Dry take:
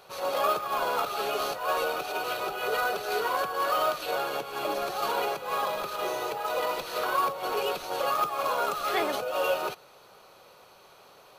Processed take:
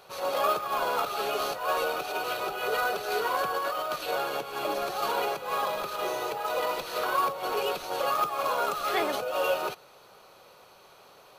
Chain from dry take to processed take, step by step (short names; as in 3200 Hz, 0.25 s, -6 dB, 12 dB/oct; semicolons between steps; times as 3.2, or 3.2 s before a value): 3.42–3.96 negative-ratio compressor -30 dBFS, ratio -1